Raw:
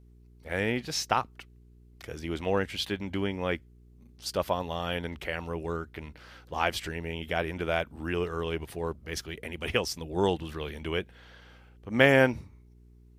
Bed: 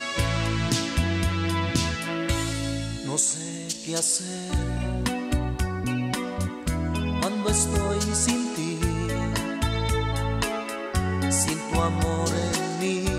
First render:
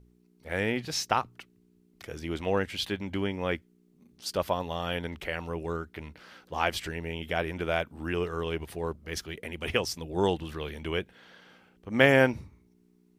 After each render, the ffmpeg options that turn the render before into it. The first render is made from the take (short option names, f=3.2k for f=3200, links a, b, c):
-af "bandreject=f=60:t=h:w=4,bandreject=f=120:t=h:w=4"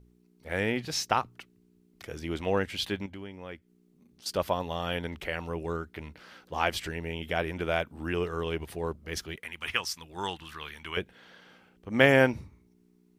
-filter_complex "[0:a]asettb=1/sr,asplit=3[a][b][c];[a]atrim=end=3.064[d];[b]atrim=start=3.06:end=4.26,asetpts=PTS-STARTPTS,afade=t=in:d=0.004:c=qsin,afade=t=out:st=1.196:d=0.004:c=qsin,acompressor=threshold=-59dB:ratio=1.5:attack=3.2:release=140:knee=1:detection=peak[e];[c]atrim=start=4.256[f];[d][e]acrossfade=d=0.004:c1=hsin:c2=qsin[g];[g][f]acrossfade=d=0.004:c1=qsin:c2=hsin,asettb=1/sr,asplit=3[h][i][j];[h]atrim=end=9.364[k];[i]atrim=start=9.36:end=10.97,asetpts=PTS-STARTPTS,afade=t=in:d=0.004:c=qsin,afade=t=out:st=1.606:d=0.004:c=qsin,lowshelf=f=790:t=q:w=1.5:g=-11[l];[j]atrim=start=10.966[m];[k][l]acrossfade=d=0.004:c1=hsin:c2=qsin[n];[n][m]acrossfade=d=0.004:c1=qsin:c2=hsin"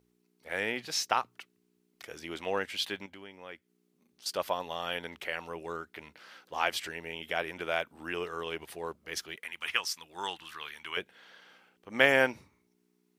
-af "highpass=f=690:p=1"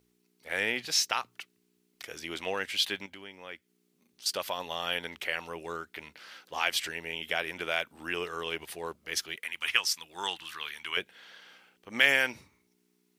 -filter_complex "[0:a]acrossover=split=1800[a][b];[a]alimiter=limit=-23dB:level=0:latency=1:release=106[c];[b]acontrast=39[d];[c][d]amix=inputs=2:normalize=0"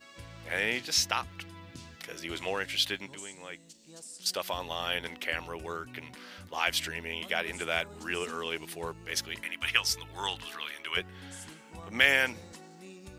-filter_complex "[1:a]volume=-23dB[a];[0:a][a]amix=inputs=2:normalize=0"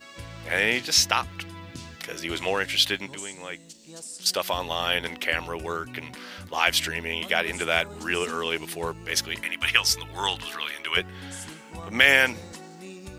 -af "volume=7dB,alimiter=limit=-2dB:level=0:latency=1"